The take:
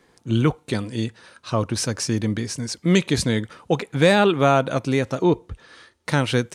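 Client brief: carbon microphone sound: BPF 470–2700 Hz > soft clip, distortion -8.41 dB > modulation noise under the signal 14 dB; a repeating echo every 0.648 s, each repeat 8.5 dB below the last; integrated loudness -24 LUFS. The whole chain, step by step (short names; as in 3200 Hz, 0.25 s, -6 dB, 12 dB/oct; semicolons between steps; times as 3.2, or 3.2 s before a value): BPF 470–2700 Hz; feedback echo 0.648 s, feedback 38%, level -8.5 dB; soft clip -20.5 dBFS; modulation noise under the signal 14 dB; gain +6 dB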